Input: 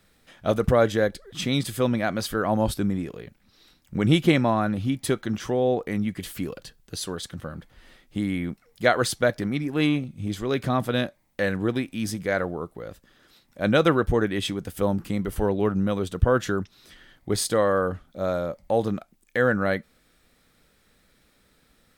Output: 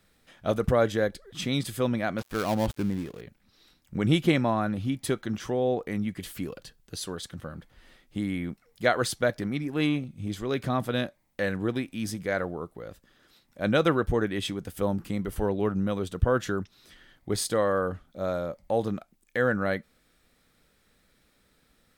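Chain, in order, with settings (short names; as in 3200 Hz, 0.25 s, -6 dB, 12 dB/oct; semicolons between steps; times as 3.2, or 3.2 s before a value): 2.18–3.21 switching dead time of 0.15 ms; gain -3.5 dB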